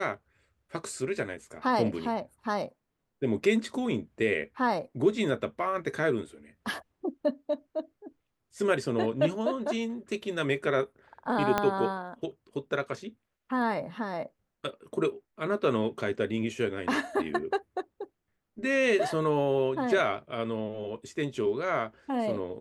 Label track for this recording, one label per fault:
11.580000	11.580000	click −11 dBFS

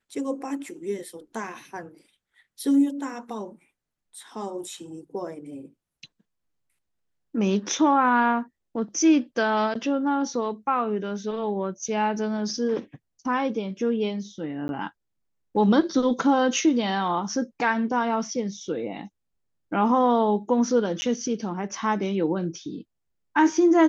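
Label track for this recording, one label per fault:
14.680000	14.690000	drop-out 11 ms
21.010000	21.020000	drop-out 10 ms

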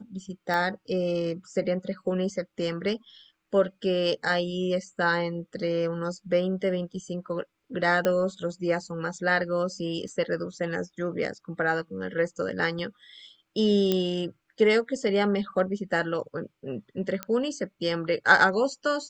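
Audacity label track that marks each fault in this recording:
0.540000	0.540000	click −17 dBFS
8.050000	8.050000	click −12 dBFS
10.080000	10.080000	drop-out 3.9 ms
12.790000	12.790000	drop-out 2.8 ms
13.920000	13.920000	click −11 dBFS
17.230000	17.230000	click −15 dBFS

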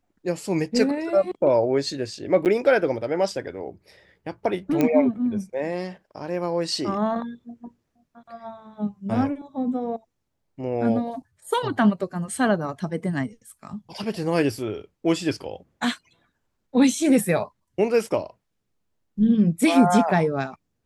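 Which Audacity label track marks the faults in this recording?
2.450000	2.460000	drop-out 8.5 ms
4.810000	4.810000	click −9 dBFS

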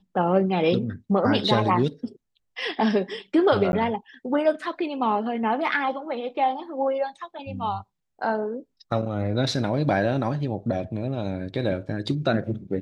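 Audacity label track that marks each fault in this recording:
3.720000	3.730000	drop-out 11 ms

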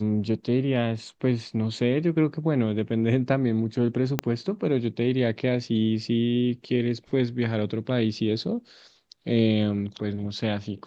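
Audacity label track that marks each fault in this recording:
4.190000	4.190000	click −8 dBFS

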